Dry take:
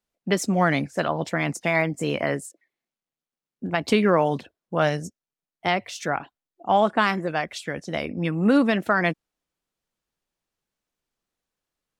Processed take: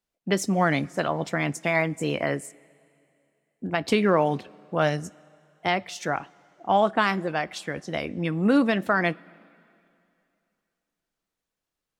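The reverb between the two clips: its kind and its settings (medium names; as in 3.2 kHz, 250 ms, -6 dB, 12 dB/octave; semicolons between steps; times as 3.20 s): two-slope reverb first 0.21 s, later 2.7 s, from -18 dB, DRR 17.5 dB; trim -1.5 dB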